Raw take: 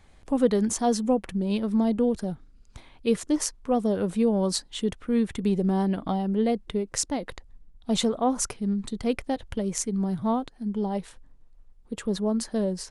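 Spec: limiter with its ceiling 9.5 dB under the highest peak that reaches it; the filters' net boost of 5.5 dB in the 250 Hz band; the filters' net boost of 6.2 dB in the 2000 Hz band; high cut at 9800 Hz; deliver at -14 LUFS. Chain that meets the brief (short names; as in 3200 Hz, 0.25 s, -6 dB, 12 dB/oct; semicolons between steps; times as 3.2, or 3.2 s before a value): LPF 9800 Hz; bell 250 Hz +6.5 dB; bell 2000 Hz +7.5 dB; gain +11 dB; limiter -4.5 dBFS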